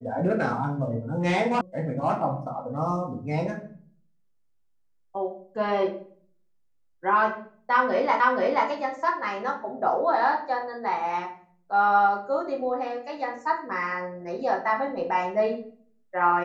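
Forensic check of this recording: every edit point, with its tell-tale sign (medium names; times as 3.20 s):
1.61 s: sound stops dead
8.20 s: repeat of the last 0.48 s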